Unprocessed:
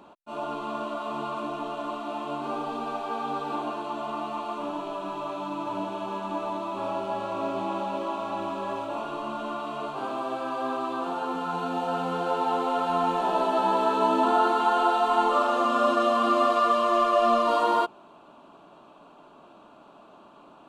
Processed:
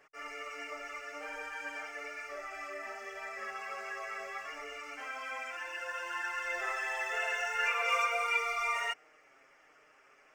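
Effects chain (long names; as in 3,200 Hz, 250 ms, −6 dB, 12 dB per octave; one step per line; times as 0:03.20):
multi-voice chorus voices 4, 0.71 Hz, delay 14 ms, depth 1.3 ms
wrong playback speed 7.5 ips tape played at 15 ips
level −8 dB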